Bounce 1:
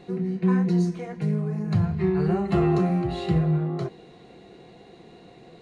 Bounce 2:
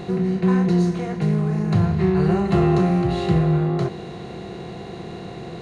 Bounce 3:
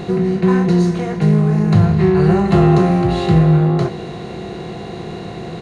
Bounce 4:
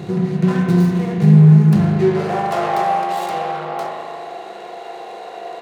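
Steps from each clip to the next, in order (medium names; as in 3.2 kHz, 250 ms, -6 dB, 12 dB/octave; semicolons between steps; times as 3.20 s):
spectral levelling over time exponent 0.6; trim +2 dB
doubling 19 ms -11.5 dB; trim +5.5 dB
tracing distortion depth 0.26 ms; high-pass sweep 120 Hz -> 660 Hz, 1.53–2.31 s; spring tank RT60 2.3 s, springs 39 ms, chirp 45 ms, DRR 0 dB; trim -6 dB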